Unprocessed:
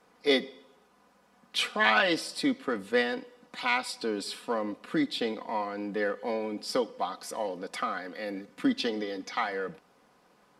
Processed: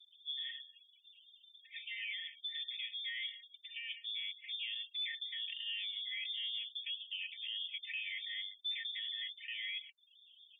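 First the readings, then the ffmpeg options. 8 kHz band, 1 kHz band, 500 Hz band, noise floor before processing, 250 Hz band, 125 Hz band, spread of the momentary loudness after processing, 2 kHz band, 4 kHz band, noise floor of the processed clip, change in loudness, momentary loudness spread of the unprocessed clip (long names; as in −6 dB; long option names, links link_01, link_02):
below −35 dB, below −40 dB, below −40 dB, −64 dBFS, below −40 dB, below −40 dB, 10 LU, −12.0 dB, −1.5 dB, −67 dBFS, −9.5 dB, 9 LU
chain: -filter_complex "[0:a]equalizer=frequency=2800:width=1.5:gain=-2.5,acrossover=split=380[link_01][link_02];[link_02]adelay=110[link_03];[link_01][link_03]amix=inputs=2:normalize=0,acrossover=split=550[link_04][link_05];[link_04]acompressor=mode=upward:threshold=-47dB:ratio=2.5[link_06];[link_05]adynamicequalizer=threshold=0.00501:dfrequency=1600:dqfactor=2:tfrequency=1600:tqfactor=2:attack=5:release=100:ratio=0.375:range=2.5:mode=boostabove:tftype=bell[link_07];[link_06][link_07]amix=inputs=2:normalize=0,areverse,acompressor=threshold=-34dB:ratio=10,areverse,bandreject=frequency=50:width_type=h:width=6,bandreject=frequency=100:width_type=h:width=6,bandreject=frequency=150:width_type=h:width=6,bandreject=frequency=200:width_type=h:width=6,bandreject=frequency=250:width_type=h:width=6,acrossover=split=470[link_08][link_09];[link_08]aeval=exprs='val(0)*(1-0.7/2+0.7/2*cos(2*PI*4.6*n/s))':channel_layout=same[link_10];[link_09]aeval=exprs='val(0)*(1-0.7/2-0.7/2*cos(2*PI*4.6*n/s))':channel_layout=same[link_11];[link_10][link_11]amix=inputs=2:normalize=0,afftfilt=real='re*gte(hypot(re,im),0.00282)':imag='im*gte(hypot(re,im),0.00282)':win_size=1024:overlap=0.75,alimiter=level_in=12.5dB:limit=-24dB:level=0:latency=1:release=39,volume=-12.5dB,lowpass=frequency=3200:width_type=q:width=0.5098,lowpass=frequency=3200:width_type=q:width=0.6013,lowpass=frequency=3200:width_type=q:width=0.9,lowpass=frequency=3200:width_type=q:width=2.563,afreqshift=-3800,afftfilt=real='re*eq(mod(floor(b*sr/1024/1800),2),1)':imag='im*eq(mod(floor(b*sr/1024/1800),2),1)':win_size=1024:overlap=0.75,volume=3.5dB"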